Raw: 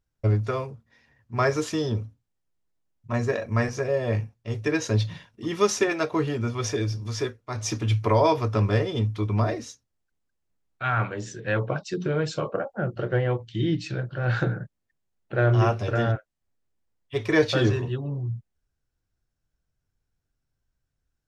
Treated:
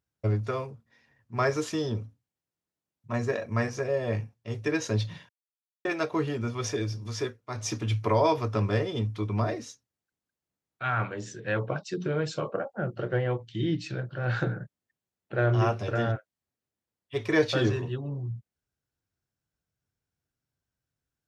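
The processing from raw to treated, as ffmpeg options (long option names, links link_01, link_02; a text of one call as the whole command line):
ffmpeg -i in.wav -filter_complex "[0:a]asplit=3[link_01][link_02][link_03];[link_01]atrim=end=5.29,asetpts=PTS-STARTPTS,afade=type=out:start_time=5.286:duration=0.004:curve=hsin[link_04];[link_02]atrim=start=5.29:end=5.85,asetpts=PTS-STARTPTS,volume=0[link_05];[link_03]atrim=start=5.85,asetpts=PTS-STARTPTS,afade=type=in:duration=0.004:curve=hsin[link_06];[link_04][link_05][link_06]concat=n=3:v=0:a=1,highpass=93,volume=-3dB" out.wav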